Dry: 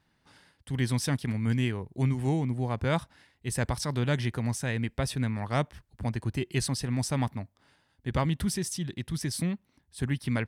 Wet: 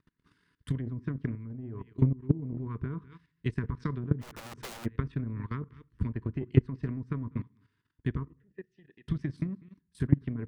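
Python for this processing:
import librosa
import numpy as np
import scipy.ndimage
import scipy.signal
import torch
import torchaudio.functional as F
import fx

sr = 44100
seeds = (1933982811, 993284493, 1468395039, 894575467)

y = scipy.signal.sosfilt(scipy.signal.cheby1(4, 1.0, [450.0, 970.0], 'bandstop', fs=sr, output='sos'), x)
y = fx.high_shelf(y, sr, hz=2300.0, db=-9.5)
y = y + 10.0 ** (-18.0 / 20.0) * np.pad(y, (int(197 * sr / 1000.0), 0))[:len(y)]
y = fx.env_lowpass_down(y, sr, base_hz=540.0, full_db=-23.5)
y = fx.vowel_filter(y, sr, vowel='e', at=(8.22, 9.07), fade=0.02)
y = fx.room_shoebox(y, sr, seeds[0], volume_m3=290.0, walls='furnished', distance_m=0.33)
y = fx.level_steps(y, sr, step_db=12)
y = fx.peak_eq(y, sr, hz=180.0, db=-4.5, octaves=2.9, at=(1.35, 2.31))
y = fx.overflow_wrap(y, sr, gain_db=39.0, at=(4.21, 4.84), fade=0.02)
y = fx.transient(y, sr, attack_db=11, sustain_db=-5)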